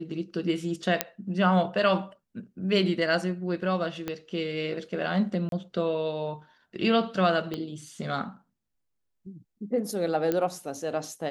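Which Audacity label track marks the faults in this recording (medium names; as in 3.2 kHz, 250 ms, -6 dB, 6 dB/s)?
1.010000	1.010000	pop -5 dBFS
4.080000	4.080000	pop -17 dBFS
5.490000	5.520000	dropout 32 ms
7.540000	7.540000	pop -19 dBFS
10.320000	10.320000	pop -14 dBFS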